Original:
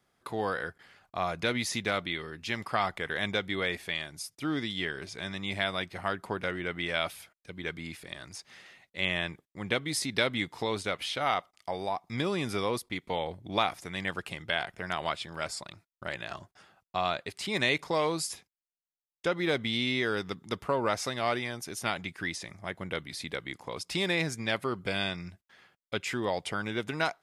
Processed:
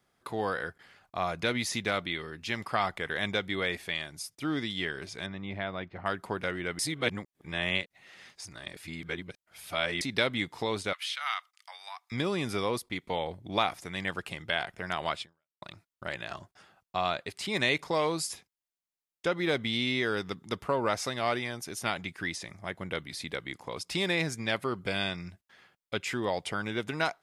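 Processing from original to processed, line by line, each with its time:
5.26–6.06 tape spacing loss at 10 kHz 34 dB
6.79–10.01 reverse
10.93–12.12 HPF 1200 Hz 24 dB/oct
15.21–15.62 fade out exponential

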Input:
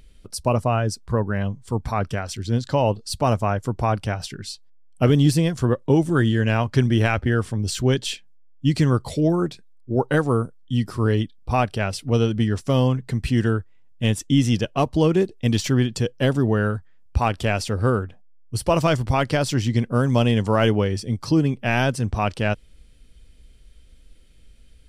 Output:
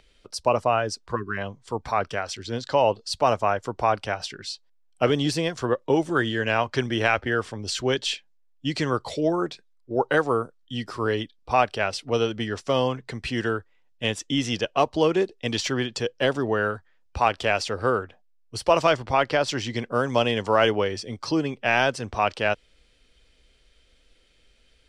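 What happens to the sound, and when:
1.15–1.38 spectral delete 410–1000 Hz
18.91–19.48 high shelf 5600 Hz -9.5 dB
whole clip: three-band isolator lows -15 dB, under 370 Hz, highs -18 dB, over 7200 Hz; gain +2 dB

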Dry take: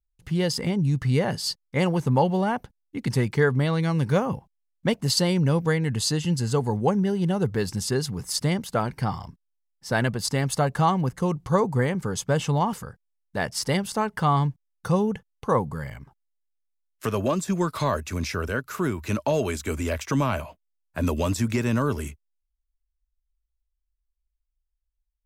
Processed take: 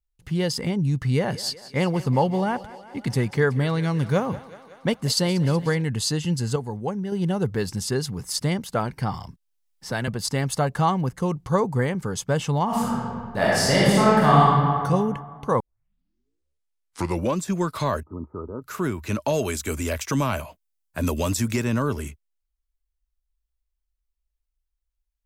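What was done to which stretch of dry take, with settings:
0.98–5.82 thinning echo 0.186 s, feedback 72%, high-pass 250 Hz, level -17 dB
6.56–7.12 gain -6 dB
9.14–10.08 three-band squash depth 40%
12.65–14.42 reverb throw, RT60 2 s, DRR -8 dB
15.6 tape start 1.82 s
18.03–18.62 rippled Chebyshev low-pass 1300 Hz, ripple 9 dB
19.22–21.62 high shelf 4900 Hz +8 dB

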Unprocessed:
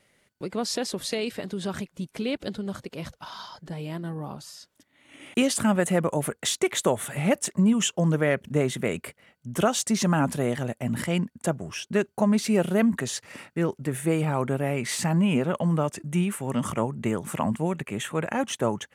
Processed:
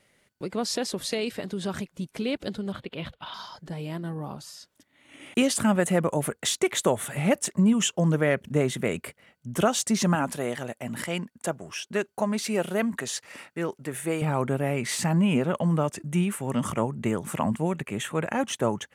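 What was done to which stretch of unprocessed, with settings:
2.72–3.34 resonant high shelf 4500 Hz -10 dB, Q 3
10.15–14.22 low shelf 250 Hz -11.5 dB

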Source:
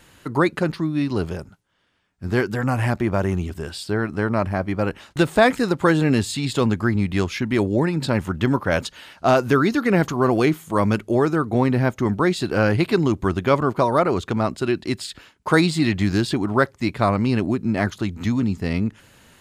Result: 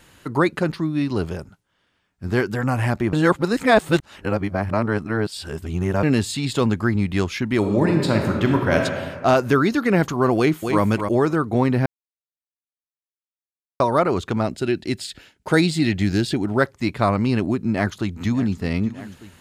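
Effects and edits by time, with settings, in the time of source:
3.13–6.03 reverse
7.58–8.84 reverb throw, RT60 1.7 s, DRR 2 dB
10.36–10.82 echo throw 0.26 s, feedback 10%, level -6 dB
11.86–13.8 mute
14.42–16.61 bell 1100 Hz -12 dB 0.38 oct
17.65–18.62 echo throw 0.6 s, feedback 80%, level -16.5 dB

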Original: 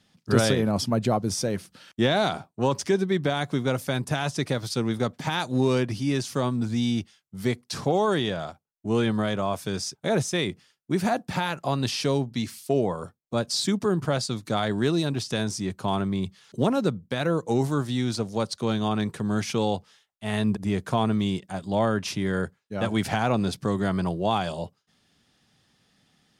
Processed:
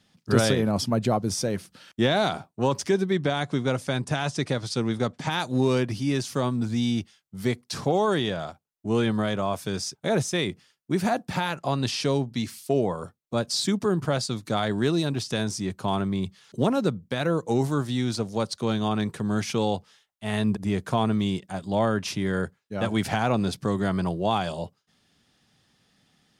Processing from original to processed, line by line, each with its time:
3.13–5.31 LPF 9600 Hz 24 dB/oct
11.55–12.28 LPF 11000 Hz

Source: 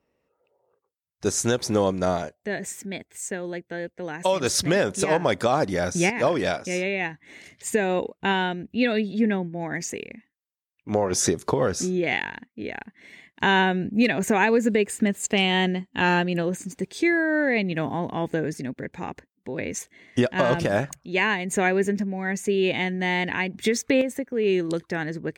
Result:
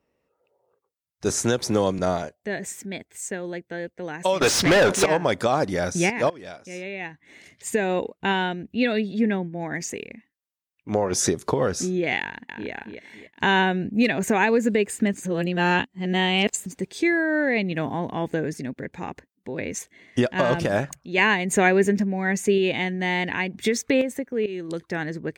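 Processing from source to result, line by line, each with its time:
1.29–1.99 three-band squash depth 40%
4.41–5.06 overdrive pedal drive 27 dB, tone 2900 Hz, clips at -9.5 dBFS
6.3–7.88 fade in linear, from -20.5 dB
12.2–12.71 echo throw 0.28 s, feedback 40%, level -7 dB
15.14–16.66 reverse
21.18–22.58 gain +3.5 dB
24.46–24.95 fade in, from -14.5 dB

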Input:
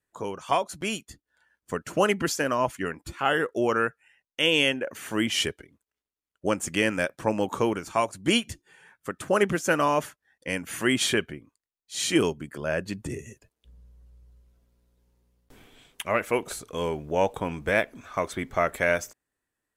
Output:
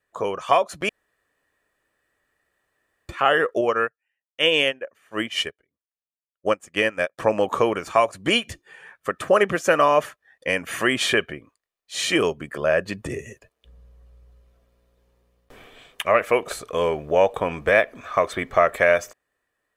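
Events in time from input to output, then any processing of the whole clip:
0.89–3.09 room tone
3.61–7.18 upward expander 2.5:1, over -38 dBFS
whole clip: compressor 1.5:1, threshold -28 dBFS; tone controls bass -9 dB, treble -9 dB; comb 1.7 ms, depth 34%; gain +9 dB

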